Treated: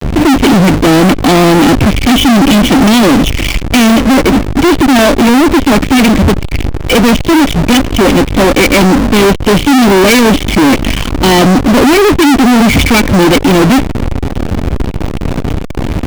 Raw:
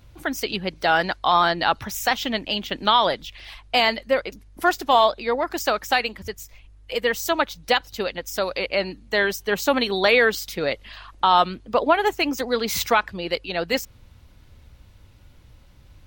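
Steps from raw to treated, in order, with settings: vocal tract filter i; bell 3100 Hz -12 dB 1.1 oct; fuzz box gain 56 dB, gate -59 dBFS; power-law curve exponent 0.35; gain +6.5 dB

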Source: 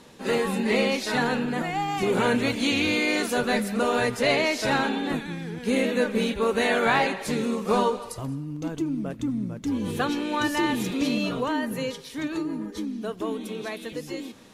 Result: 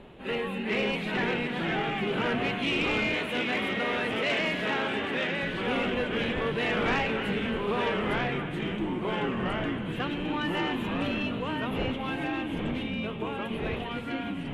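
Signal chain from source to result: wind noise 470 Hz -35 dBFS; echoes that change speed 0.395 s, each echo -2 st, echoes 3; resonant high shelf 4000 Hz -11 dB, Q 3; split-band echo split 730 Hz, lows 0.153 s, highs 0.279 s, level -13.5 dB; soft clip -12 dBFS, distortion -20 dB; 3.14–5.43 HPF 220 Hz 6 dB/oct; gain -7 dB

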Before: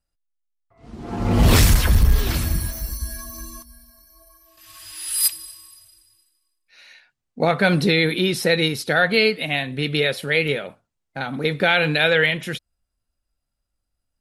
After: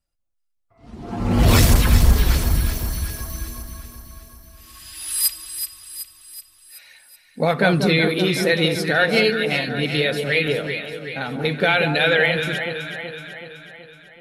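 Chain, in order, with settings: bin magnitudes rounded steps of 15 dB; echo with dull and thin repeats by turns 0.188 s, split 1200 Hz, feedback 74%, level -5.5 dB

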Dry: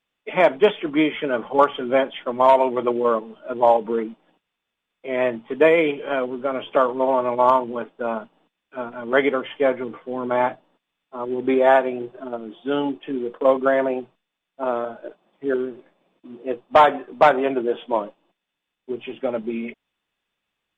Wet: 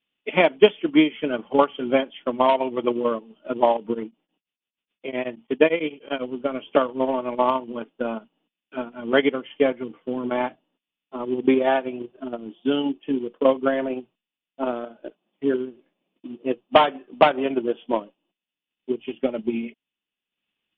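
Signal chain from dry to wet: bell 250 Hz +9.5 dB 1.6 oct; transient shaper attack +7 dB, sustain -8 dB; synth low-pass 3000 Hz, resonance Q 4.2; 3.93–6.22 beating tremolo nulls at 5.7 Hz -> 11 Hz; gain -9 dB

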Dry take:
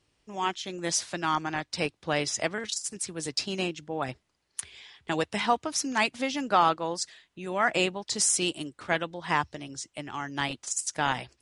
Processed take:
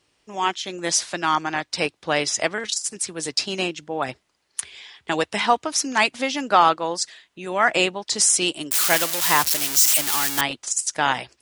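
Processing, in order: 8.71–10.41 switching spikes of -16.5 dBFS; low shelf 190 Hz -11 dB; gain +7 dB

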